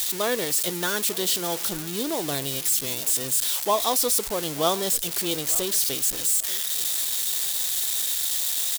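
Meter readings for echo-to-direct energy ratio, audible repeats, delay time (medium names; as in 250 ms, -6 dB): -19.0 dB, 2, 889 ms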